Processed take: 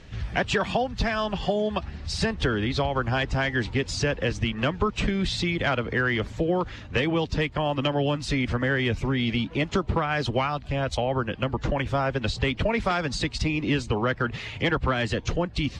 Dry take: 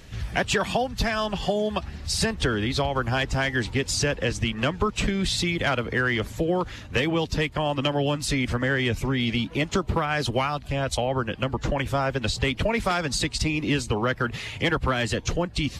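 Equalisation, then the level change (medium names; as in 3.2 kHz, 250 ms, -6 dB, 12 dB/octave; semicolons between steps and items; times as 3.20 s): distance through air 100 m; 0.0 dB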